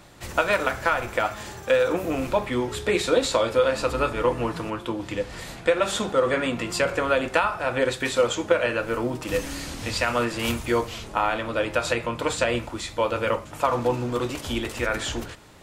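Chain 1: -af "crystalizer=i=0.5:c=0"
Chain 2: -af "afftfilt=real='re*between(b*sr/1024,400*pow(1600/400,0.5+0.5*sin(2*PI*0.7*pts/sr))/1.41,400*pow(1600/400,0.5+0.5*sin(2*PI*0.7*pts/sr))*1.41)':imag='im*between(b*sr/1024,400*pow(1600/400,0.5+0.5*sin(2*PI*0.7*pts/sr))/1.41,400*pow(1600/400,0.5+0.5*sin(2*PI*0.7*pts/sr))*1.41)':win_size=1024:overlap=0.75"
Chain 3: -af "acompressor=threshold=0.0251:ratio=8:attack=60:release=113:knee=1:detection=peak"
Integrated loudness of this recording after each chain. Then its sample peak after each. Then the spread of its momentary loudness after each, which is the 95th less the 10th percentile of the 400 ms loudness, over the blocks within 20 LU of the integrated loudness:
-25.0 LUFS, -31.0 LUFS, -31.0 LUFS; -4.5 dBFS, -11.5 dBFS, -8.0 dBFS; 7 LU, 13 LU, 3 LU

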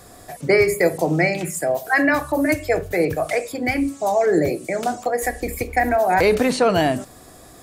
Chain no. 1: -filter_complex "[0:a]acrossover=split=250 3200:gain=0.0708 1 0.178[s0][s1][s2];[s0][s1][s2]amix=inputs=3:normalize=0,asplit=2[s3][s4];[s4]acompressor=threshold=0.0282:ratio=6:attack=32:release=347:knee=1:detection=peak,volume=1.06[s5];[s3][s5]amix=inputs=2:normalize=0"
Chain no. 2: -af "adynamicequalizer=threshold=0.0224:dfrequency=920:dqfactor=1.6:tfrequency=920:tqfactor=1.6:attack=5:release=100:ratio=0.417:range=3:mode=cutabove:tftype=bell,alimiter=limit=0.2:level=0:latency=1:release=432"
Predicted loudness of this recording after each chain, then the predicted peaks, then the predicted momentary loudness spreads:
-19.0 LUFS, -25.0 LUFS; -4.5 dBFS, -14.0 dBFS; 6 LU, 5 LU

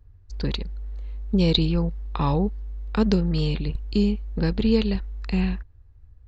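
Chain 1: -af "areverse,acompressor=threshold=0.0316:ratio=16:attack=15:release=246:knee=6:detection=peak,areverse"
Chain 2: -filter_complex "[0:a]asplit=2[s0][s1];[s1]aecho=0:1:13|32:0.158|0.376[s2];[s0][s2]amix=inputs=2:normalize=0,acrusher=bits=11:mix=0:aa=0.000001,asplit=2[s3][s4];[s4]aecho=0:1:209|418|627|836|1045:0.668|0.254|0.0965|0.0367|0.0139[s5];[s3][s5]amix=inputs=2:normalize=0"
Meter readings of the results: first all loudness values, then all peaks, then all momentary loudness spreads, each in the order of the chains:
-36.0 LUFS, -22.5 LUFS; -18.5 dBFS, -3.0 dBFS; 5 LU, 13 LU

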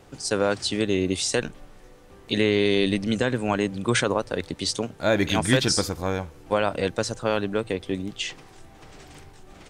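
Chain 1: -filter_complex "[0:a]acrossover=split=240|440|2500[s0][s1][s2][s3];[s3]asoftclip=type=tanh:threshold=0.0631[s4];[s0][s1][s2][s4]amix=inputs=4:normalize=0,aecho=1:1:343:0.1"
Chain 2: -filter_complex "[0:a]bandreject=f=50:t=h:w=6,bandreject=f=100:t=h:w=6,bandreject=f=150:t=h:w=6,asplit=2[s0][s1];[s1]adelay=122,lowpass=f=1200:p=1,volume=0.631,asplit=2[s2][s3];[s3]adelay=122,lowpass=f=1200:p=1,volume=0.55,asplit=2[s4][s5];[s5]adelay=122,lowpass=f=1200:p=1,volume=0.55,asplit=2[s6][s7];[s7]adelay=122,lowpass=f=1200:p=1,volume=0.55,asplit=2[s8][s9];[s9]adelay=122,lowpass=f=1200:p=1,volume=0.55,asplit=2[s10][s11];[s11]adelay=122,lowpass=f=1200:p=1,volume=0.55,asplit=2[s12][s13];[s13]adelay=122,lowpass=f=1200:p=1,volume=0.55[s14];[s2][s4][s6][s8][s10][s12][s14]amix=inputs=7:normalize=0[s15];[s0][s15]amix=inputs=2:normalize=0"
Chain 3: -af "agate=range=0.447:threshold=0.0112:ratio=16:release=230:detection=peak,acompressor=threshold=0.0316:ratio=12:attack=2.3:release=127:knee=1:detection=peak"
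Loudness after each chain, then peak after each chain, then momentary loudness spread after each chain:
-25.0 LUFS, -23.5 LUFS, -36.5 LUFS; -7.0 dBFS, -7.0 dBFS, -16.0 dBFS; 9 LU, 9 LU, 19 LU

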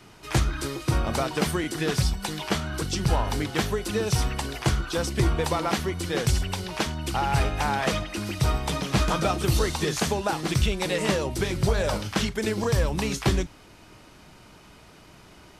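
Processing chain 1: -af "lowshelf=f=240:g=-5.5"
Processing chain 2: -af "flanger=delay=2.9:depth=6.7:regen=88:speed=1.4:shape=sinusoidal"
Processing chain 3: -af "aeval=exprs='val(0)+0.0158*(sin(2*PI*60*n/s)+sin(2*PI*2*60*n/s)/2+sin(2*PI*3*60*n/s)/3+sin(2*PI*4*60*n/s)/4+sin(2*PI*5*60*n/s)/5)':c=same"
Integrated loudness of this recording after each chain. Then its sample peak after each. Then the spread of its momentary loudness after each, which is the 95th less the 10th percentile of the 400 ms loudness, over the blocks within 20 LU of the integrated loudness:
-28.0 LUFS, -31.0 LUFS, -26.0 LUFS; -12.5 dBFS, -16.0 dBFS, -11.5 dBFS; 4 LU, 4 LU, 15 LU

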